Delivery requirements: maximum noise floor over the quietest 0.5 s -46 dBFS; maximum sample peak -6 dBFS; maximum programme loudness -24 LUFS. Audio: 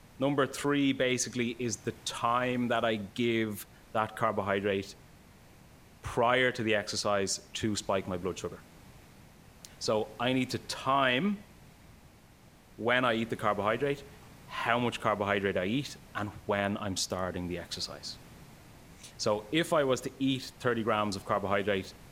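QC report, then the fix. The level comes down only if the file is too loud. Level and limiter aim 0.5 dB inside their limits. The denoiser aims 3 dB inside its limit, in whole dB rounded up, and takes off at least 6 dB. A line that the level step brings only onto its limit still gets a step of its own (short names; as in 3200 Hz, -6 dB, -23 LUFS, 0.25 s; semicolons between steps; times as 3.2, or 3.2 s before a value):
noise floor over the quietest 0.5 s -57 dBFS: OK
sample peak -10.5 dBFS: OK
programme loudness -31.0 LUFS: OK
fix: none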